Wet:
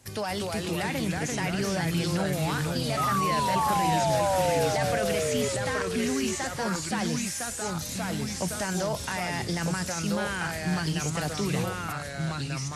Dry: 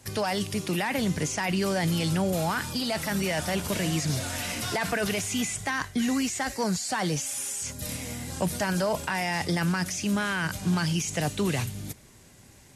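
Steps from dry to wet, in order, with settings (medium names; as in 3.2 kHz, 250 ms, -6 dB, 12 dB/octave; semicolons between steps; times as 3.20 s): painted sound fall, 2.97–4.69 s, 460–1300 Hz -24 dBFS; ever faster or slower copies 224 ms, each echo -2 st, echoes 2; trim -3.5 dB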